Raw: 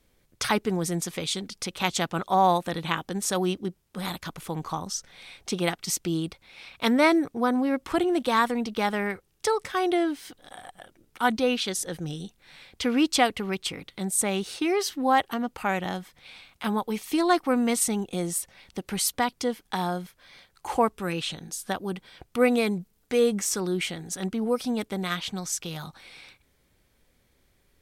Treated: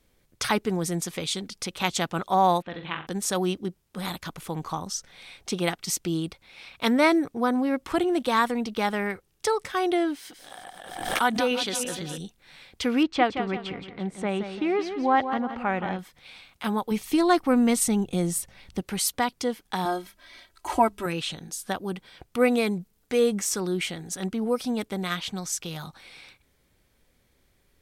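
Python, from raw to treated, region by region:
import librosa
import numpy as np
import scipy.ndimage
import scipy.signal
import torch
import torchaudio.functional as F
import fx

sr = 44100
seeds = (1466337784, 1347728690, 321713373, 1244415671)

y = fx.chain(x, sr, fx.ladder_lowpass(hz=3700.0, resonance_pct=30),
    fx.room_flutter(wall_m=7.7, rt60_s=0.35), at=(2.62, 3.07))
y = fx.chain(y, sr, fx.reverse_delay_fb(ms=170, feedback_pct=57, wet_db=-8.0),
    fx.low_shelf(hz=260.0, db=-6.5),
    fx.pre_swell(db_per_s=60.0), at=(10.15, 12.18))
y = fx.chain(y, sr, fx.lowpass(hz=2400.0, slope=12),
    fx.echo_feedback(ms=172, feedback_pct=39, wet_db=-9.0), at=(13.03, 15.99))
y = fx.chain(y, sr, fx.low_shelf(hz=170.0, db=11.5),
    fx.hum_notches(base_hz=50, count=3), at=(16.91, 18.83))
y = fx.chain(y, sr, fx.hum_notches(base_hz=50, count=4),
    fx.comb(ms=3.1, depth=0.88), at=(19.85, 21.06))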